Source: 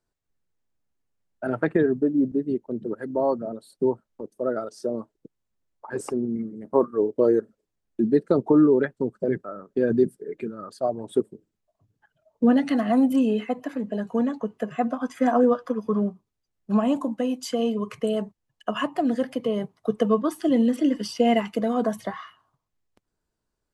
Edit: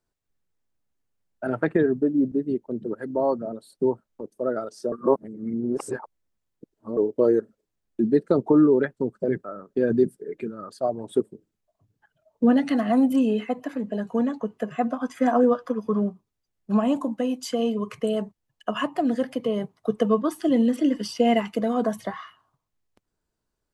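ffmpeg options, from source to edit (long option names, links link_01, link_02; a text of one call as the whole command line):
ffmpeg -i in.wav -filter_complex "[0:a]asplit=3[link_01][link_02][link_03];[link_01]atrim=end=4.922[link_04];[link_02]atrim=start=4.918:end=6.972,asetpts=PTS-STARTPTS,areverse[link_05];[link_03]atrim=start=6.968[link_06];[link_04][link_05]acrossfade=duration=0.004:curve1=hsin:curve2=hsin[link_07];[link_07][link_06]acrossfade=duration=0.004:curve1=hsin:curve2=hsin" out.wav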